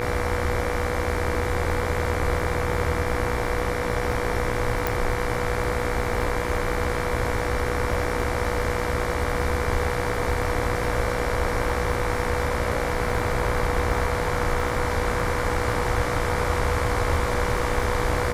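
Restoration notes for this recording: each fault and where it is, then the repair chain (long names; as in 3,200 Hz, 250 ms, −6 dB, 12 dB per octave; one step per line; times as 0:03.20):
mains buzz 60 Hz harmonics 39 −30 dBFS
surface crackle 59 per second −33 dBFS
whistle 490 Hz −29 dBFS
0:04.87: click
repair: click removal
hum removal 60 Hz, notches 39
notch filter 490 Hz, Q 30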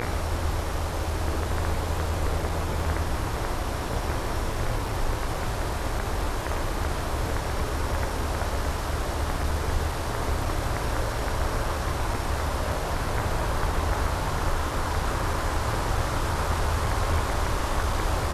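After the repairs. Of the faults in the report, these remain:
0:04.87: click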